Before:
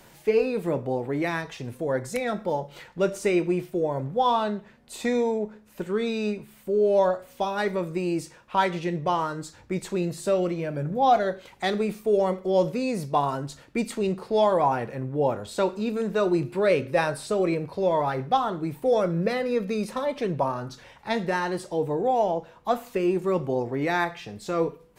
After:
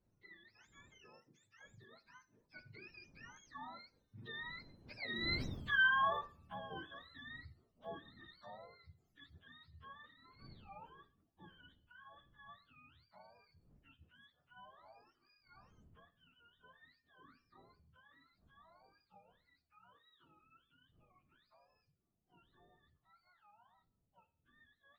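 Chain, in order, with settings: spectrum mirrored in octaves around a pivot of 860 Hz; wind noise 190 Hz -40 dBFS; Doppler pass-by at 5.56, 53 m/s, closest 6 m

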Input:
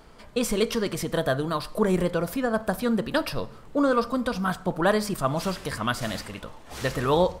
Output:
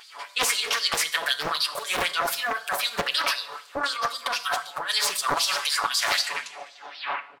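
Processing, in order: tape stop at the end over 1.22 s; LFO high-pass sine 3.9 Hz 790–4500 Hz; negative-ratio compressor -32 dBFS, ratio -1; notches 50/100/150/200/250 Hz; comb 7 ms, depth 90%; two-slope reverb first 0.61 s, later 2.3 s, from -21 dB, DRR 11.5 dB; Doppler distortion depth 0.69 ms; gain +5 dB

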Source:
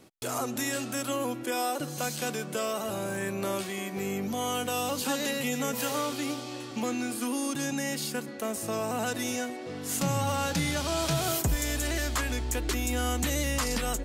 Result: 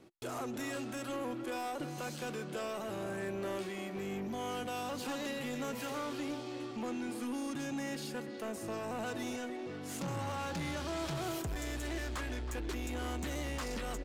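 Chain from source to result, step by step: high shelf 5500 Hz -11 dB; soft clip -30 dBFS, distortion -12 dB; bell 350 Hz +7 dB 0.22 oct; speakerphone echo 0.32 s, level -8 dB; gain -4.5 dB

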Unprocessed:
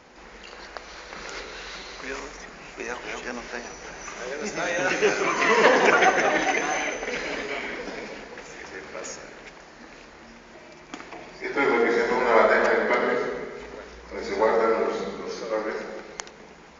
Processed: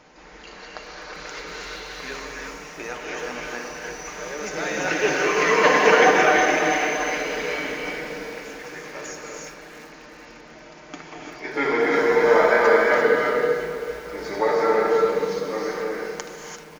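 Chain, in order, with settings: comb 6.6 ms, depth 39%; non-linear reverb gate 0.37 s rising, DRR -0.5 dB; lo-fi delay 0.387 s, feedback 55%, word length 6-bit, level -14.5 dB; gain -1.5 dB

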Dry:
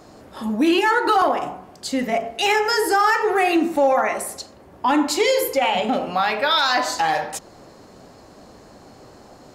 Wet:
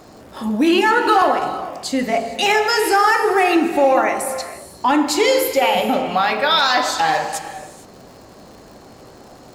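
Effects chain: crackle 130/s -39 dBFS; non-linear reverb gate 0.49 s flat, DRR 9.5 dB; gain +2.5 dB

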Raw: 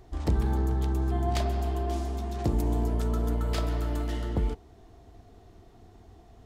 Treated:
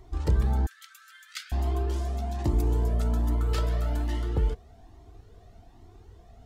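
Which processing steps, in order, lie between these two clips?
0.66–1.52 steep high-pass 1300 Hz 96 dB/oct; cascading flanger rising 1.2 Hz; gain +4 dB

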